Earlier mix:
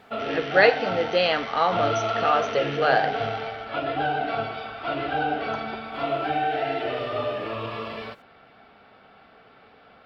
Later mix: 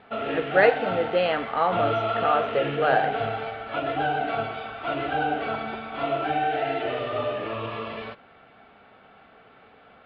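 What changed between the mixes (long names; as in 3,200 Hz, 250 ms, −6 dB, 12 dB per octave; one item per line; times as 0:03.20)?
speech: add low-pass filter 1,800 Hz 6 dB per octave
master: add low-pass filter 3,700 Hz 24 dB per octave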